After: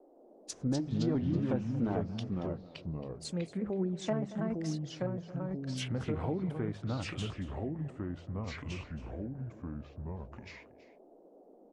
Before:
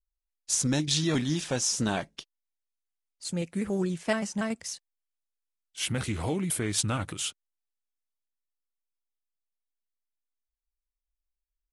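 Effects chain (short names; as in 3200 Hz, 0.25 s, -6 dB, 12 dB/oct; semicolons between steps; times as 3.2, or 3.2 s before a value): treble ducked by the level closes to 780 Hz, closed at -25 dBFS; notches 50/100/150/200 Hz; on a send: echo 0.23 s -16.5 dB; on the sum: band noise 270–710 Hz -57 dBFS; echoes that change speed 0.154 s, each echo -3 st, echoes 2; gain -4 dB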